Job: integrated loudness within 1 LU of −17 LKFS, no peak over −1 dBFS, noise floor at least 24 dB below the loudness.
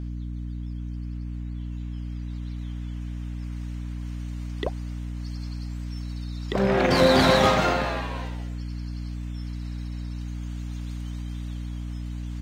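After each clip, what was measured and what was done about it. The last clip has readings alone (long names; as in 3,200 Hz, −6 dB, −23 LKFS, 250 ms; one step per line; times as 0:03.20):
mains hum 60 Hz; hum harmonics up to 300 Hz; level of the hum −30 dBFS; integrated loudness −28.0 LKFS; sample peak −7.0 dBFS; target loudness −17.0 LKFS
→ mains-hum notches 60/120/180/240/300 Hz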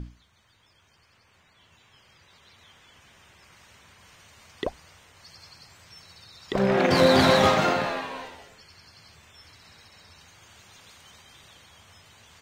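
mains hum none found; integrated loudness −22.0 LKFS; sample peak −7.5 dBFS; target loudness −17.0 LKFS
→ level +5 dB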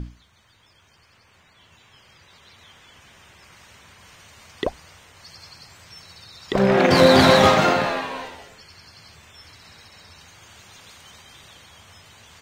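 integrated loudness −17.0 LKFS; sample peak −2.5 dBFS; background noise floor −57 dBFS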